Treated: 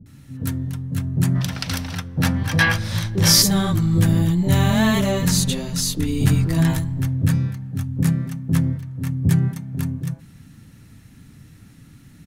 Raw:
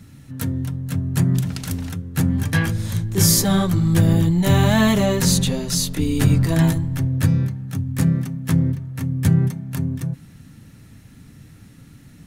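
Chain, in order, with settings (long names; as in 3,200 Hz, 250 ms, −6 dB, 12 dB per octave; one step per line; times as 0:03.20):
gain on a spectral selection 0:01.29–0:03.36, 480–6,200 Hz +9 dB
multiband delay without the direct sound lows, highs 60 ms, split 540 Hz
level −1 dB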